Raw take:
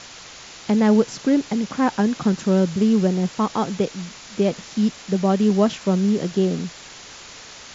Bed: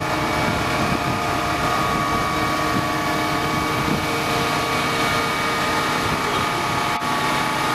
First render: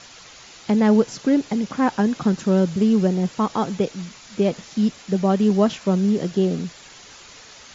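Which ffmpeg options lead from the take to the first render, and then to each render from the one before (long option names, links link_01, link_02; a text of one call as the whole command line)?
ffmpeg -i in.wav -af "afftdn=noise_reduction=6:noise_floor=-41" out.wav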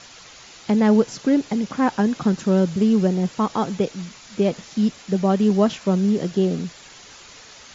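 ffmpeg -i in.wav -af anull out.wav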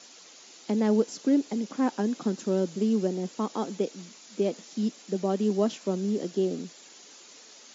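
ffmpeg -i in.wav -af "highpass=frequency=250:width=0.5412,highpass=frequency=250:width=1.3066,equalizer=frequency=1500:width=0.34:gain=-11.5" out.wav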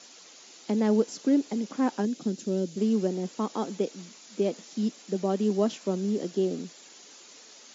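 ffmpeg -i in.wav -filter_complex "[0:a]asettb=1/sr,asplit=3[link_01][link_02][link_03];[link_01]atrim=end=2.054[link_04];[link_02]atrim=start=2.05:end=2.77,asetpts=PTS-STARTPTS,afade=type=in:duration=0.004:curve=qsin,afade=type=out:start_time=0.716:duration=0.004:curve=qsin,equalizer=frequency=1100:width=0.89:gain=-12.5[link_05];[link_03]atrim=start=2.766[link_06];[link_04][link_05]acrossfade=duration=0.004:curve1=hsin:curve2=qsin[link_07];[link_07][link_06]acrossfade=duration=0.004:curve1=qsin:curve2=hsin" out.wav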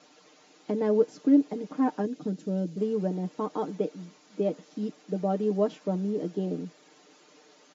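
ffmpeg -i in.wav -af "lowpass=frequency=1100:poles=1,aecho=1:1:6.6:0.7" out.wav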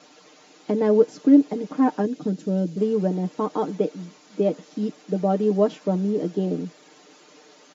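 ffmpeg -i in.wav -af "volume=6dB" out.wav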